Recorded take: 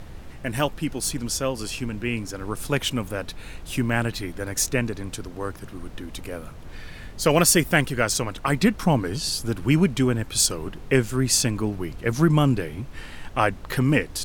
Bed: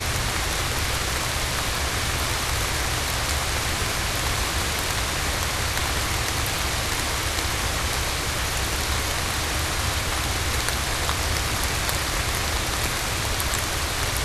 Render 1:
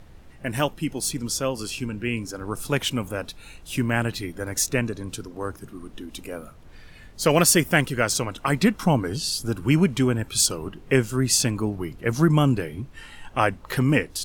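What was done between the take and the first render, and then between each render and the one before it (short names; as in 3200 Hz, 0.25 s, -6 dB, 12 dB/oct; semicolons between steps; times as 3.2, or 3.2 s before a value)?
noise print and reduce 8 dB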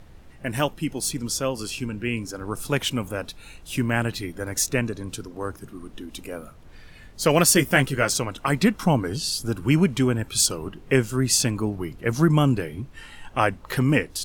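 7.54–8.11 doubler 15 ms -6.5 dB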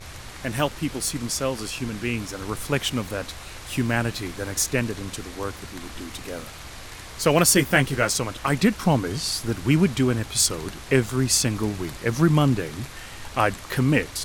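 add bed -15.5 dB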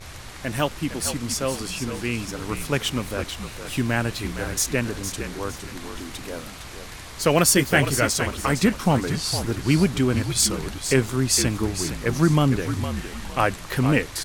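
frequency-shifting echo 0.46 s, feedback 32%, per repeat -55 Hz, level -9 dB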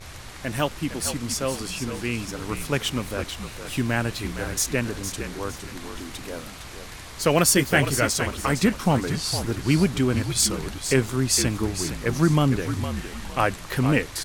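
gain -1 dB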